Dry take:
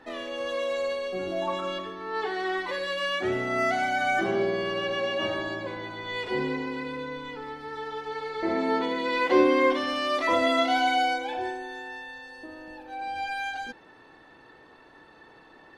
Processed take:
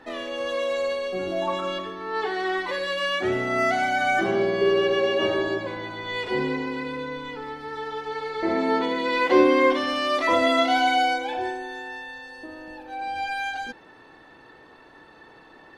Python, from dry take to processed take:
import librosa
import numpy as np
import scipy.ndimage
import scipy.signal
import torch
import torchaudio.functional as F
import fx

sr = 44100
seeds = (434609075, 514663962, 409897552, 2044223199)

y = fx.peak_eq(x, sr, hz=410.0, db=13.0, octaves=0.35, at=(4.61, 5.58))
y = y * 10.0 ** (3.0 / 20.0)